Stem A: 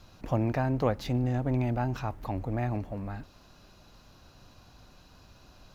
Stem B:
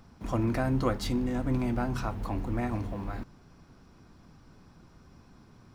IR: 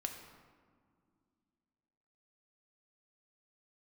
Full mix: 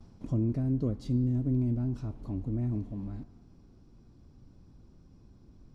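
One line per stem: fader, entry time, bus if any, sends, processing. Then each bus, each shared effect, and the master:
0.0 dB, 0.00 s, no send, inverse Chebyshev low-pass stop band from 990 Hz, stop band 50 dB
0.0 dB, 0.00 s, send -13.5 dB, compressor 3:1, threshold -37 dBFS, peak gain reduction 11.5 dB; LPF 8200 Hz 12 dB/oct; bell 1600 Hz -9 dB 1.9 oct; auto duck -11 dB, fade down 0.35 s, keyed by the first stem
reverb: on, RT60 2.1 s, pre-delay 4 ms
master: gate with hold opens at -51 dBFS

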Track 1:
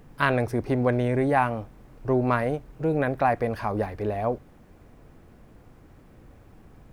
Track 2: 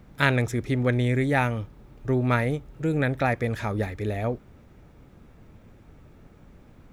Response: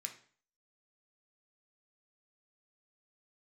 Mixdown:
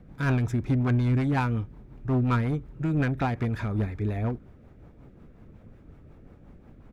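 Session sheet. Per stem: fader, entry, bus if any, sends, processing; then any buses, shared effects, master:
-6.0 dB, 0.00 s, no send, dry
+1.5 dB, 0.5 ms, no send, overloaded stage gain 21.5 dB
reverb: off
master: high shelf 2800 Hz -11.5 dB; rotary speaker horn 5.5 Hz

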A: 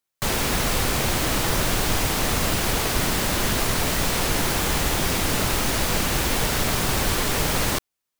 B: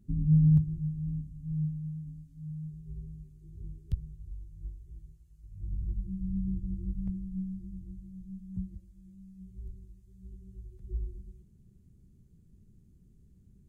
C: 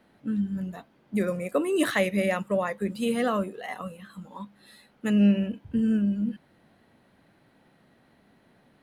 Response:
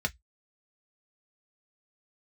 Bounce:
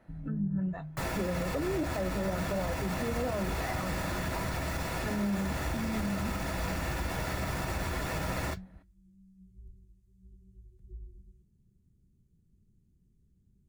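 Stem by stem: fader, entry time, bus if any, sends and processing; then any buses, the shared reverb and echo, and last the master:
-4.5 dB, 0.75 s, send -13 dB, notch 6200 Hz, Q 16; auto duck -10 dB, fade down 1.20 s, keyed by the third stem
-8.0 dB, 0.00 s, no send, compressor 2:1, threshold -34 dBFS, peak gain reduction 9 dB
-4.5 dB, 0.00 s, send -7 dB, treble ducked by the level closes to 700 Hz, closed at -24 dBFS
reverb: on, RT60 0.10 s, pre-delay 3 ms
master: limiter -23.5 dBFS, peak gain reduction 9 dB

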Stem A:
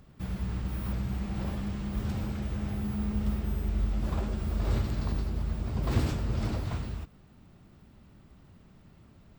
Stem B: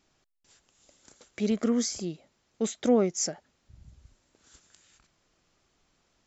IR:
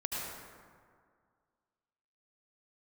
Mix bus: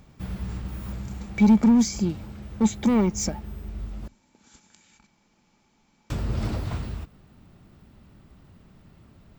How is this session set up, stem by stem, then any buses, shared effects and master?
+3.0 dB, 0.00 s, muted 4.08–6.1, no send, auto duck -9 dB, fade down 1.75 s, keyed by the second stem
+1.5 dB, 0.00 s, no send, overloaded stage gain 26 dB; small resonant body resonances 210/860/2300 Hz, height 14 dB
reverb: off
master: dry

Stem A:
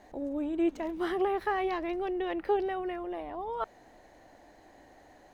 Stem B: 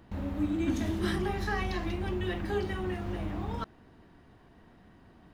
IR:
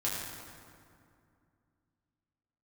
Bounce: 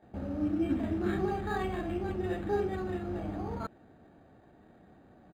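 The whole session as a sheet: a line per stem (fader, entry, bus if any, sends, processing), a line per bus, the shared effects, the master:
-6.5 dB, 0.00 s, no send, dry
0.0 dB, 26 ms, no send, dry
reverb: off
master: high shelf 3500 Hz -8 dB; notch comb 1000 Hz; decimation joined by straight lines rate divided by 8×

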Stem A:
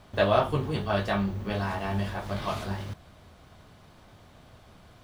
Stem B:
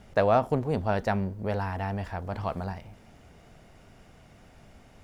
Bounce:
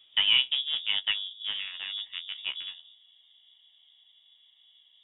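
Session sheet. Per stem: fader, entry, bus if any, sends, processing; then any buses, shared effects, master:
-11.0 dB, 0.00 s, no send, auto duck -22 dB, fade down 1.35 s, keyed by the second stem
+3.0 dB, 0.00 s, no send, Wiener smoothing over 41 samples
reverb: off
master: HPF 170 Hz 12 dB/oct; flange 0.98 Hz, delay 9.5 ms, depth 7.3 ms, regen +39%; inverted band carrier 3600 Hz

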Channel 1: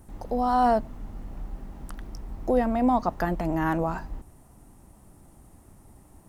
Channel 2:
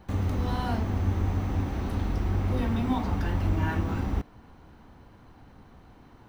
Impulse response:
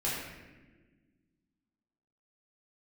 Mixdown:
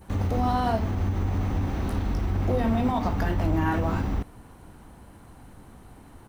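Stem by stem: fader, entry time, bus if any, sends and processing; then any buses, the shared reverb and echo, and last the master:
-1.5 dB, 0.00 s, no send, limiter -18 dBFS, peak gain reduction 6.5 dB
+2.5 dB, 11 ms, no send, limiter -21 dBFS, peak gain reduction 6 dB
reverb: off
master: dry

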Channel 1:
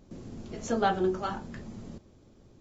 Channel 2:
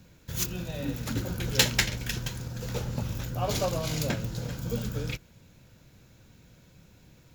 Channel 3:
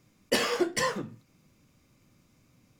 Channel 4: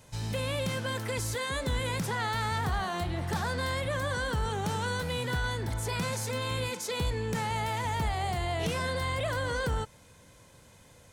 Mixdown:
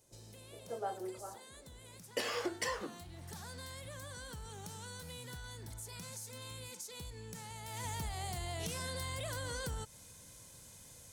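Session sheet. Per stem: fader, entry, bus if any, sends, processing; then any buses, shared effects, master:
-2.0 dB, 0.00 s, no send, ladder band-pass 630 Hz, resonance 35%
off
-2.5 dB, 1.85 s, no send, HPF 320 Hz 12 dB/oct; compressor 6:1, threshold -31 dBFS, peak gain reduction 9.5 dB
2.58 s -20.5 dB -> 3.37 s -13 dB -> 7.62 s -13 dB -> 7.84 s -6 dB, 0.00 s, no send, tone controls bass +3 dB, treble +14 dB; compressor 4:1, threshold -32 dBFS, peak gain reduction 9.5 dB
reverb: off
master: dry

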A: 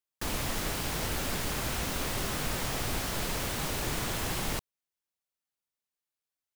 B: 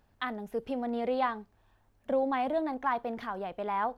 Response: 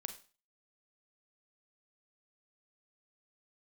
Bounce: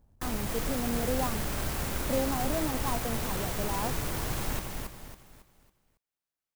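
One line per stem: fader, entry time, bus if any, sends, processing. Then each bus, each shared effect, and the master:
-2.5 dB, 0.00 s, no send, echo send -4 dB, dry
-4.5 dB, 0.00 s, no send, no echo send, LPF 1200 Hz; low shelf 320 Hz +8 dB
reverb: off
echo: feedback echo 0.276 s, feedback 37%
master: low shelf 130 Hz +4 dB; clock jitter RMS 0.069 ms

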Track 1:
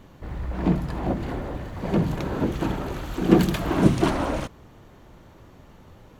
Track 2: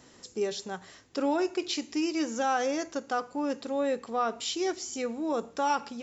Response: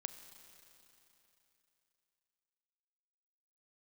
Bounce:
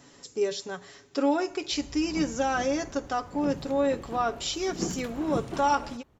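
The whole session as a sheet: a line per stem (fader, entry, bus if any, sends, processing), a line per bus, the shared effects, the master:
-15.0 dB, 1.50 s, no send, dry
-0.5 dB, 0.00 s, send -13.5 dB, comb 7.1 ms, depth 50%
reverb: on, RT60 3.3 s, pre-delay 30 ms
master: dry

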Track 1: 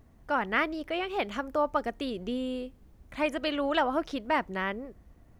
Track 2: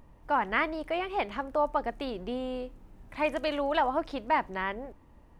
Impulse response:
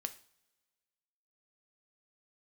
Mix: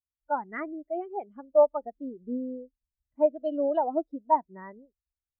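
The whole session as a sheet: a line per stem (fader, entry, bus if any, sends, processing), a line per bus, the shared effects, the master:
+1.0 dB, 0.00 s, no send, dry
-4.5 dB, 0.00 s, no send, dry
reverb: off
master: spectral expander 2.5:1

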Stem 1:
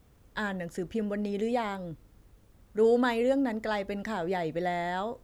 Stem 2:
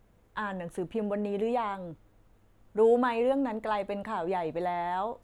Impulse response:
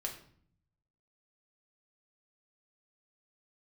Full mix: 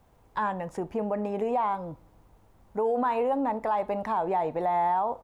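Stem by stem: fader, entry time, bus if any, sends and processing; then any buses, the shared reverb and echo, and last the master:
-4.0 dB, 0.00 s, no send, compressor, threshold -35 dBFS, peak gain reduction 14.5 dB
-5.5 dB, 0.4 ms, send -12.5 dB, bell 870 Hz +13.5 dB 1.2 oct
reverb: on, RT60 0.55 s, pre-delay 5 ms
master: limiter -19 dBFS, peak gain reduction 8 dB

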